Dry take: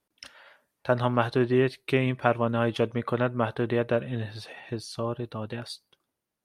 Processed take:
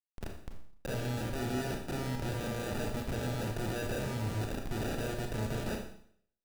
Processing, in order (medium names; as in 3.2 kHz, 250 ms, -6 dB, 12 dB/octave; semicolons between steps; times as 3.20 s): peaking EQ 1.1 kHz -7 dB 1.9 oct; upward compressor, threshold -41 dBFS; Schmitt trigger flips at -40 dBFS; sample-and-hold 41×; Schroeder reverb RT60 0.61 s, combs from 28 ms, DRR 2 dB; trim -5.5 dB